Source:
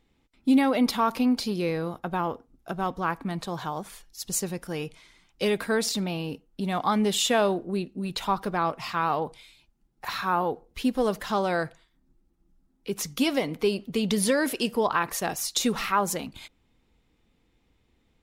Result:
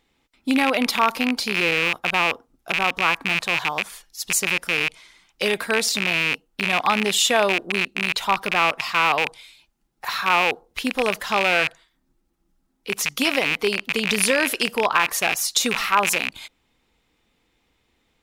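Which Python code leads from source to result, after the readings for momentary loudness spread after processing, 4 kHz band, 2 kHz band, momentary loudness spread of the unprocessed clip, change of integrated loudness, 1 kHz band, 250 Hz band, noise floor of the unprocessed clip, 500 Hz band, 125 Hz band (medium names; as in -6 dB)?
7 LU, +9.0 dB, +13.5 dB, 11 LU, +6.5 dB, +5.0 dB, -1.5 dB, -69 dBFS, +2.0 dB, -2.5 dB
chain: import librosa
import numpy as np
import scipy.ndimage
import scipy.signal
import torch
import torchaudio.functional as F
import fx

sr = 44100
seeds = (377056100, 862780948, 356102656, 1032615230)

y = fx.rattle_buzz(x, sr, strikes_db=-39.0, level_db=-15.0)
y = fx.low_shelf(y, sr, hz=400.0, db=-11.0)
y = y * librosa.db_to_amplitude(6.5)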